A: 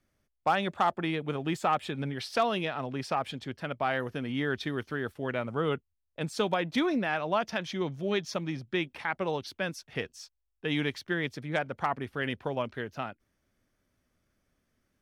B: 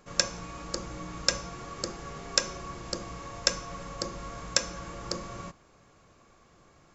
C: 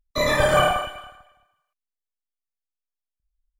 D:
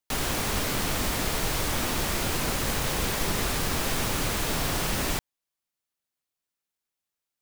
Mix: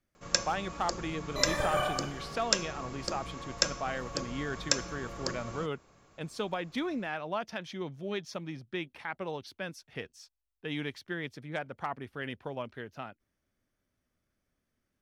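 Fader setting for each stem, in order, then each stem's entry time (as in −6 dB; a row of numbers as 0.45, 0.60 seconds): −6.0 dB, −2.0 dB, −12.5 dB, muted; 0.00 s, 0.15 s, 1.20 s, muted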